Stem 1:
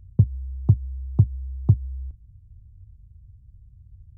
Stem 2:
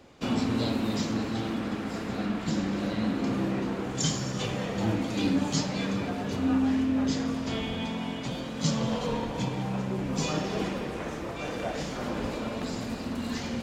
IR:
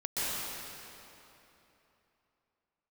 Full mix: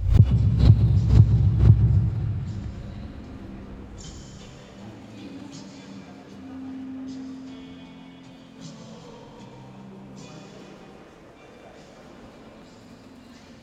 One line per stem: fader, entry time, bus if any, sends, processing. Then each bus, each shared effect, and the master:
−0.5 dB, 0.00 s, send −6.5 dB, no processing
−17.0 dB, 0.00 s, send −9 dB, no processing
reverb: on, RT60 3.2 s, pre-delay 117 ms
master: background raised ahead of every attack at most 99 dB per second

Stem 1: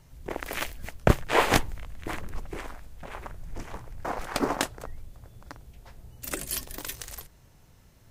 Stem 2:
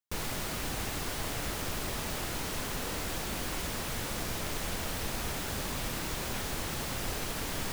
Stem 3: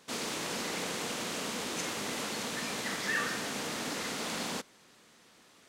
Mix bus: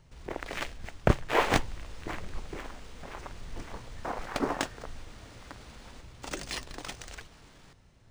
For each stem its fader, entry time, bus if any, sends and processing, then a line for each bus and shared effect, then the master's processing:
−3.0 dB, 0.00 s, no send, no processing
−11.5 dB, 0.00 s, no send, brickwall limiter −35 dBFS, peak gain reduction 13.5 dB
−17.0 dB, 1.40 s, no send, no processing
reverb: not used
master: linearly interpolated sample-rate reduction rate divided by 3×

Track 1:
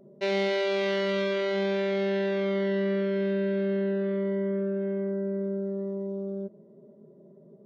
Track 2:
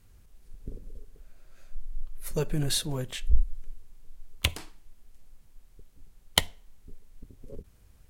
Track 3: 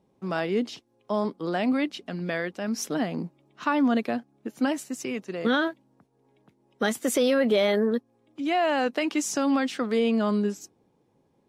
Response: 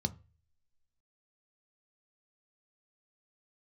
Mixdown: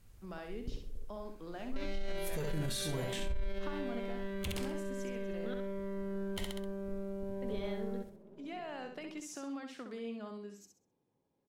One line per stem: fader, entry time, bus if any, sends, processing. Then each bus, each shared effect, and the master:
−1.5 dB, 1.55 s, no send, echo send −11.5 dB, gain on one half-wave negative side −7 dB; notch filter 800 Hz, Q 24; brickwall limiter −30 dBFS, peak gain reduction 11.5 dB
−3.0 dB, 0.00 s, no send, echo send −6.5 dB, no processing
−14.5 dB, 0.00 s, muted 0:05.54–0:07.42, no send, echo send −6 dB, downward compressor 2 to 1, threshold −31 dBFS, peak gain reduction 7 dB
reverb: not used
echo: repeating echo 65 ms, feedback 30%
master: brickwall limiter −27.5 dBFS, peak gain reduction 19.5 dB

